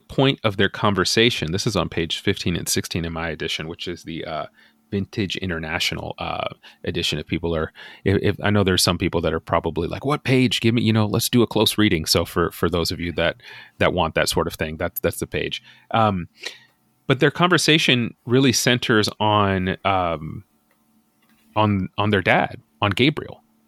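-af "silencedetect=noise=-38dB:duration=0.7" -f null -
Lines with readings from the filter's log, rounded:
silence_start: 20.41
silence_end: 21.56 | silence_duration: 1.15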